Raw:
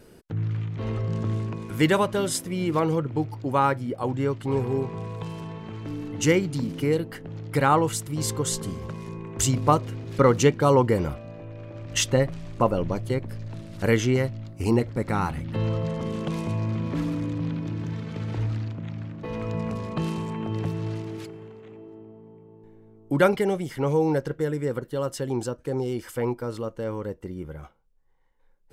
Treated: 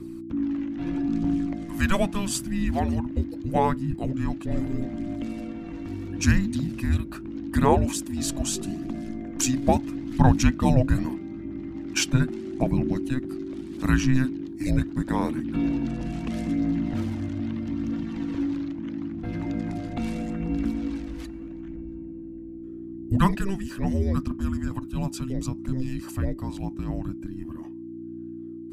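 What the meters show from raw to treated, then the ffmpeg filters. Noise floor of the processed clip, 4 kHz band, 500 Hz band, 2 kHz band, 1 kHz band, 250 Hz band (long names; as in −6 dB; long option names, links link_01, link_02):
−38 dBFS, −1.5 dB, −7.0 dB, −1.5 dB, −3.0 dB, +3.0 dB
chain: -af "aeval=exprs='val(0)+0.0126*(sin(2*PI*60*n/s)+sin(2*PI*2*60*n/s)/2+sin(2*PI*3*60*n/s)/3+sin(2*PI*4*60*n/s)/4+sin(2*PI*5*60*n/s)/5)':channel_layout=same,aphaser=in_gain=1:out_gain=1:delay=2.2:decay=0.3:speed=0.78:type=triangular,afreqshift=-390,volume=-1dB"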